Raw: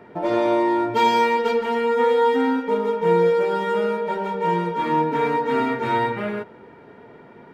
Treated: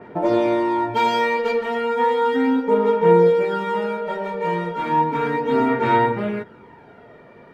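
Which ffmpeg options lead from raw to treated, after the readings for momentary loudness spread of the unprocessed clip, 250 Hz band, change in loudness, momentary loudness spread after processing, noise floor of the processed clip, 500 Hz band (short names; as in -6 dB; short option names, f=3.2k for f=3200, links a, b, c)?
7 LU, +2.0 dB, +1.0 dB, 10 LU, -46 dBFS, +1.0 dB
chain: -af "aphaser=in_gain=1:out_gain=1:delay=1.7:decay=0.42:speed=0.34:type=sinusoidal,adynamicequalizer=threshold=0.0112:dfrequency=3700:dqfactor=0.7:tfrequency=3700:tqfactor=0.7:attack=5:release=100:ratio=0.375:range=2:mode=cutabove:tftype=highshelf"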